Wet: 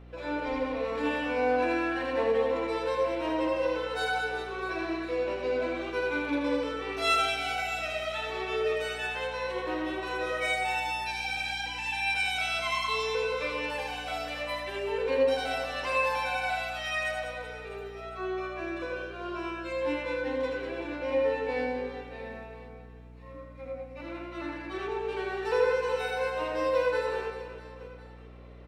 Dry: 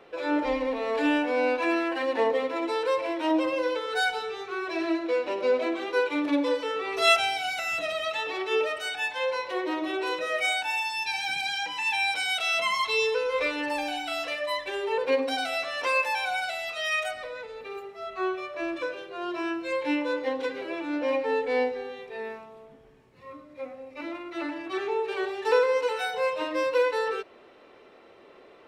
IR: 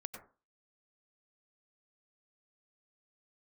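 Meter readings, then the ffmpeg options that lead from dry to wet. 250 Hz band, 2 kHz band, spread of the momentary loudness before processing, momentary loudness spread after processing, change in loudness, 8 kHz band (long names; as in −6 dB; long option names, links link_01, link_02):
−4.5 dB, −3.0 dB, 11 LU, 14 LU, −3.0 dB, −4.5 dB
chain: -filter_complex "[0:a]aecho=1:1:80|200|380|650|1055:0.631|0.398|0.251|0.158|0.1[link_01];[1:a]atrim=start_sample=2205,afade=type=out:start_time=0.16:duration=0.01,atrim=end_sample=7497[link_02];[link_01][link_02]afir=irnorm=-1:irlink=0,aeval=exprs='val(0)+0.00562*(sin(2*PI*60*n/s)+sin(2*PI*2*60*n/s)/2+sin(2*PI*3*60*n/s)/3+sin(2*PI*4*60*n/s)/4+sin(2*PI*5*60*n/s)/5)':channel_layout=same,volume=-2.5dB"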